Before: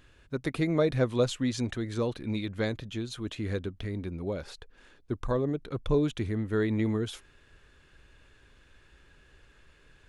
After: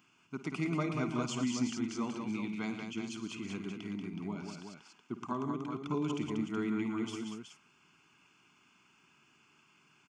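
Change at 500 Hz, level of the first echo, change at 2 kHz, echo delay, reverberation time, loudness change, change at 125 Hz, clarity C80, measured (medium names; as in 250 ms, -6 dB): -11.5 dB, -14.5 dB, -4.5 dB, 53 ms, no reverb, -6.0 dB, -9.5 dB, no reverb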